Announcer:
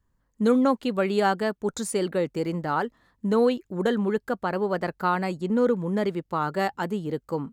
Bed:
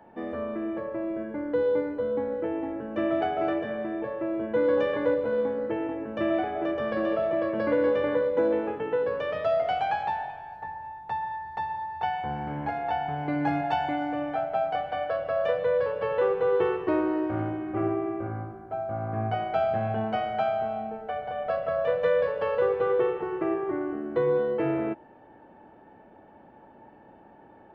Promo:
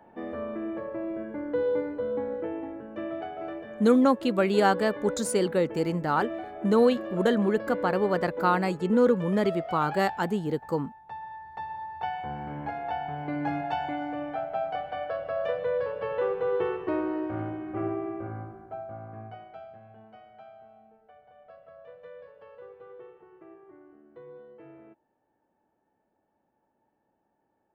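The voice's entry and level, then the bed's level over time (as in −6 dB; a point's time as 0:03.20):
3.40 s, +0.5 dB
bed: 0:02.33 −2 dB
0:03.26 −9.5 dB
0:11.08 −9.5 dB
0:11.86 −3.5 dB
0:18.62 −3.5 dB
0:19.82 −23 dB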